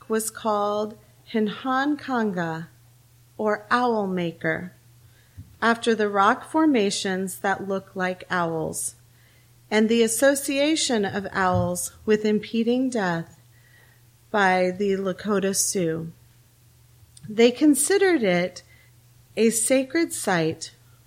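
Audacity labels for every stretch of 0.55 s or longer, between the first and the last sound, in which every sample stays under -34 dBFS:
2.650000	3.390000	silence
4.680000	5.390000	silence
8.900000	9.710000	silence
13.230000	14.340000	silence
16.090000	17.170000	silence
18.590000	19.370000	silence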